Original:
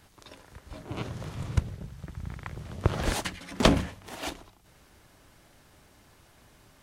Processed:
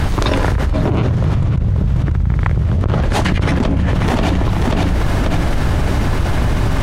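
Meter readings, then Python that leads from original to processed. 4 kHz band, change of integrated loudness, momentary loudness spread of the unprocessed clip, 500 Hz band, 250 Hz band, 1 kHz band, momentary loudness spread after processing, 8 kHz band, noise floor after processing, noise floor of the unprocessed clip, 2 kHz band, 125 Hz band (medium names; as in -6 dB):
+9.5 dB, +14.5 dB, 24 LU, +13.5 dB, +15.5 dB, +15.0 dB, 2 LU, +7.5 dB, -17 dBFS, -59 dBFS, +14.0 dB, +20.0 dB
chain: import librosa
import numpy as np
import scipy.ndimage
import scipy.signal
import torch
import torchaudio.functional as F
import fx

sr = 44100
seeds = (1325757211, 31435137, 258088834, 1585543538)

p1 = fx.lowpass(x, sr, hz=2000.0, slope=6)
p2 = fx.low_shelf(p1, sr, hz=140.0, db=12.0)
p3 = fx.rider(p2, sr, range_db=5, speed_s=2.0)
p4 = p3 + fx.echo_feedback(p3, sr, ms=537, feedback_pct=32, wet_db=-12.5, dry=0)
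p5 = fx.env_flatten(p4, sr, amount_pct=100)
y = p5 * librosa.db_to_amplitude(-6.5)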